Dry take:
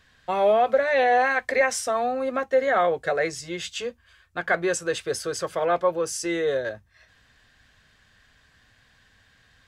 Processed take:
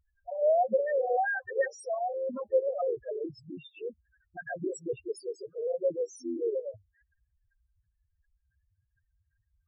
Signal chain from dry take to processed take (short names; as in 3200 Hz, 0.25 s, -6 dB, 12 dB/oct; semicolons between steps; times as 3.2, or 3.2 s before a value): loudest bins only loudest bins 2; formant shift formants -5 st; gain -3 dB